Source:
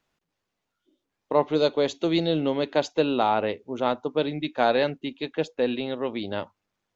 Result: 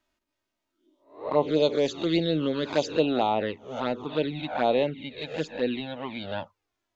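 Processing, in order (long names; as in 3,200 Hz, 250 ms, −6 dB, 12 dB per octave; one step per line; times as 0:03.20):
peak hold with a rise ahead of every peak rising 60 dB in 0.43 s
0:04.41–0:05.18: high-shelf EQ 4,100 Hz −7 dB
flanger swept by the level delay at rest 3.2 ms, full sweep at −16.5 dBFS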